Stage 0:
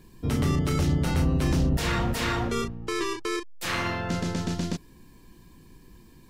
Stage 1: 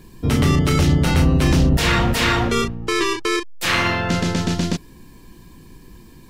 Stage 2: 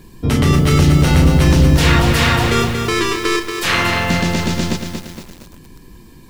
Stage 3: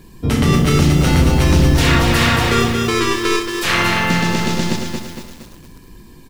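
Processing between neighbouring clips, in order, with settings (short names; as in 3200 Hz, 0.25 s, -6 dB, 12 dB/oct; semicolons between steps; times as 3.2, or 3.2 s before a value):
dynamic EQ 2800 Hz, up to +4 dB, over -42 dBFS, Q 0.85; gain +8 dB
lo-fi delay 0.232 s, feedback 55%, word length 6-bit, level -6 dB; gain +2.5 dB
tapped delay 64/224 ms -8/-8.5 dB; gain -1 dB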